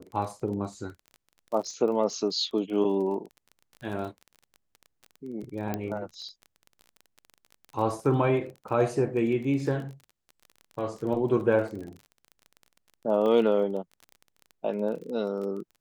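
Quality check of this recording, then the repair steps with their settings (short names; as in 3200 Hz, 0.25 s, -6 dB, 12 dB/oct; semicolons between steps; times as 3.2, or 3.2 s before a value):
crackle 23/s -36 dBFS
5.74 pop -16 dBFS
13.26 gap 2.3 ms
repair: de-click; interpolate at 13.26, 2.3 ms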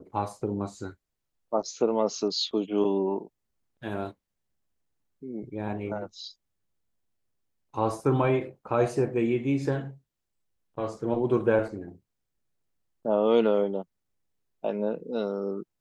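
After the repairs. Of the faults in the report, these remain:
none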